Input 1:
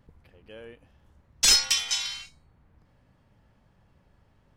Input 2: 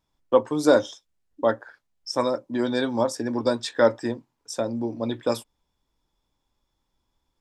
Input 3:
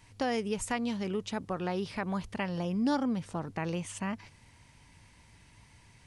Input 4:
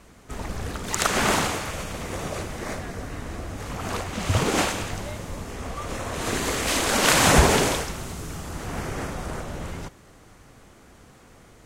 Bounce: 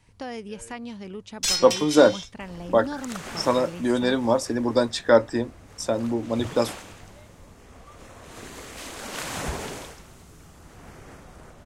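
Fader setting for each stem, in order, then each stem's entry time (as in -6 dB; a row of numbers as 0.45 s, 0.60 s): -5.0 dB, +2.0 dB, -4.0 dB, -14.5 dB; 0.00 s, 1.30 s, 0.00 s, 2.10 s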